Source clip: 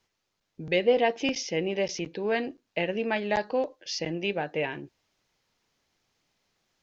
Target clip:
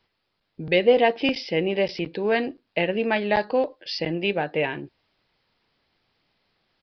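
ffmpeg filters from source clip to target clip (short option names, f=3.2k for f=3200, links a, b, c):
-af "aresample=11025,aresample=44100,volume=5dB"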